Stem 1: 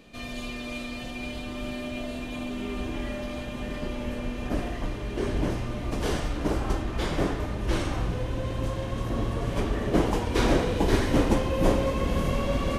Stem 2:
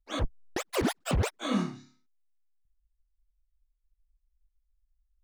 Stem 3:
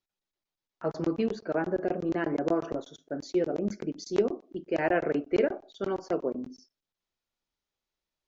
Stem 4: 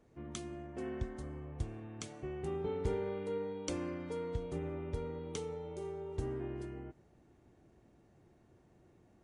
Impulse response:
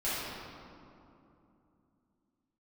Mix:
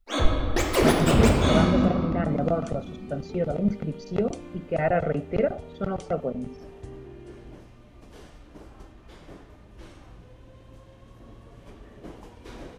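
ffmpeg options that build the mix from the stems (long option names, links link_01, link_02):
-filter_complex "[0:a]adelay=2100,volume=-19.5dB[link_01];[1:a]volume=3dB,asplit=2[link_02][link_03];[link_03]volume=-4dB[link_04];[2:a]bass=frequency=250:gain=12,treble=frequency=4000:gain=-13,aecho=1:1:1.5:0.72,volume=0dB[link_05];[3:a]acrossover=split=360|3000[link_06][link_07][link_08];[link_07]acompressor=threshold=-43dB:ratio=6[link_09];[link_06][link_09][link_08]amix=inputs=3:normalize=0,adelay=650,volume=-3dB[link_10];[4:a]atrim=start_sample=2205[link_11];[link_04][link_11]afir=irnorm=-1:irlink=0[link_12];[link_01][link_02][link_05][link_10][link_12]amix=inputs=5:normalize=0"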